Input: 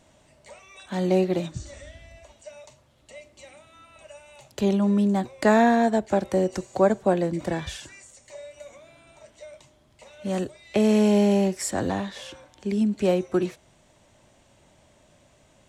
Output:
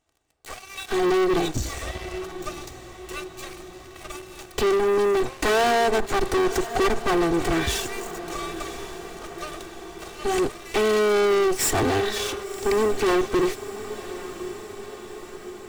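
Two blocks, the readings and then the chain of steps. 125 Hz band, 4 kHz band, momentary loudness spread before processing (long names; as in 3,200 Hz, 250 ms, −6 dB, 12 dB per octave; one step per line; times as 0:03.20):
−4.0 dB, +9.0 dB, 20 LU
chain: lower of the sound and its delayed copy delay 2.6 ms
leveller curve on the samples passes 5
feedback delay with all-pass diffusion 1,058 ms, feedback 63%, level −13.5 dB
level −5 dB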